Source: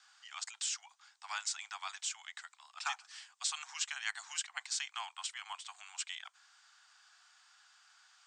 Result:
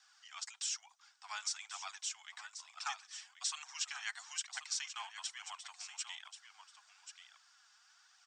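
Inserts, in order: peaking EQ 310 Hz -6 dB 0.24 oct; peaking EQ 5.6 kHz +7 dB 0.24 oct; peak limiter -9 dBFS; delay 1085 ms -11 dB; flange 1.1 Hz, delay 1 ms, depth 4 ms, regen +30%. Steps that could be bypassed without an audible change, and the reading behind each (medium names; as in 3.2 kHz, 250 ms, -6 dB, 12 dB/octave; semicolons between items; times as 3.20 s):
peaking EQ 310 Hz: input has nothing below 600 Hz; peak limiter -9 dBFS: peak at its input -18.5 dBFS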